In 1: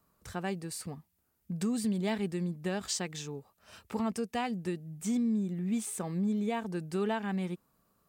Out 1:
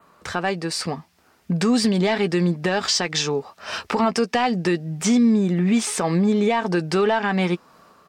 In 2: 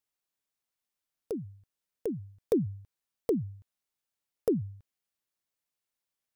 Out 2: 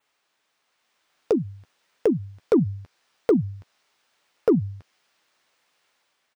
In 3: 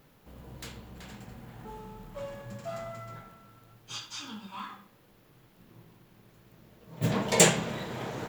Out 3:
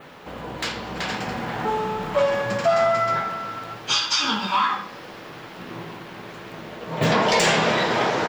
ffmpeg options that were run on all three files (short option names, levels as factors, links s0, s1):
-filter_complex "[0:a]asplit=2[s0][s1];[s1]adelay=12,volume=0.251[s2];[s0][s2]amix=inputs=2:normalize=0,asplit=2[s3][s4];[s4]highpass=f=720:p=1,volume=12.6,asoftclip=type=tanh:threshold=0.631[s5];[s3][s5]amix=inputs=2:normalize=0,lowpass=f=2900:p=1,volume=0.501,asplit=2[s6][s7];[s7]acompressor=threshold=0.0126:ratio=6,volume=0.891[s8];[s6][s8]amix=inputs=2:normalize=0,equalizer=f=15000:w=0.45:g=-11,dynaudnorm=f=650:g=3:m=1.78,adynamicequalizer=threshold=0.00447:dfrequency=5200:dqfactor=2.7:tfrequency=5200:tqfactor=2.7:attack=5:release=100:ratio=0.375:range=4:mode=boostabove:tftype=bell,alimiter=limit=0.237:level=0:latency=1:release=119,volume=1.19"